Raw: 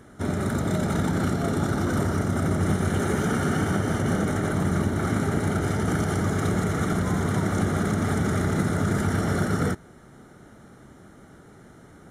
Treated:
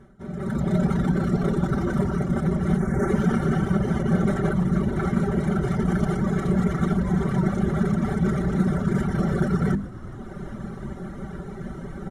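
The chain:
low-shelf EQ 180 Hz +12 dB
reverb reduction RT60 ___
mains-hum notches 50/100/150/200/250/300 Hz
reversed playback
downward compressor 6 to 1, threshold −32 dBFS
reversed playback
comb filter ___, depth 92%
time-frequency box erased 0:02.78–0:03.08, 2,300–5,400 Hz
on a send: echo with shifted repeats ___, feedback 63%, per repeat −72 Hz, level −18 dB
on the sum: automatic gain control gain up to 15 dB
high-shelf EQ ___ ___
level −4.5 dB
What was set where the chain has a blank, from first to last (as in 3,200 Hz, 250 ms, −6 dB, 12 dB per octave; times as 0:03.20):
1.2 s, 5.2 ms, 418 ms, 4,300 Hz, −11.5 dB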